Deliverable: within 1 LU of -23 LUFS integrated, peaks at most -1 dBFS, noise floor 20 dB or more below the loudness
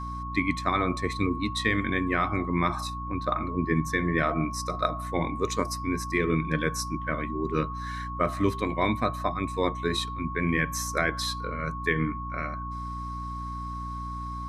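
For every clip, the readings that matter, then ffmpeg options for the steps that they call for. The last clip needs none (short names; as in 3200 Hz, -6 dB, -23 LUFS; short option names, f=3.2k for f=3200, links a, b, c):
hum 60 Hz; harmonics up to 300 Hz; hum level -34 dBFS; steady tone 1100 Hz; tone level -35 dBFS; loudness -28.5 LUFS; peak -10.0 dBFS; loudness target -23.0 LUFS
-> -af "bandreject=f=60:t=h:w=6,bandreject=f=120:t=h:w=6,bandreject=f=180:t=h:w=6,bandreject=f=240:t=h:w=6,bandreject=f=300:t=h:w=6"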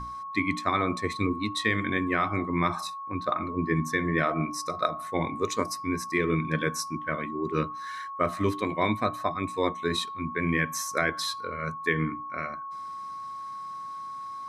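hum none; steady tone 1100 Hz; tone level -35 dBFS
-> -af "bandreject=f=1.1k:w=30"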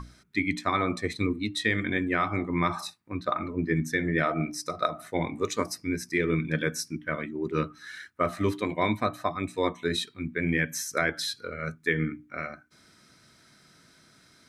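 steady tone none; loudness -29.0 LUFS; peak -11.0 dBFS; loudness target -23.0 LUFS
-> -af "volume=6dB"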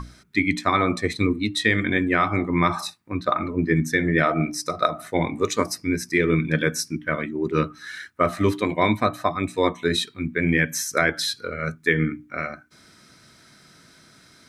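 loudness -23.0 LUFS; peak -5.0 dBFS; noise floor -53 dBFS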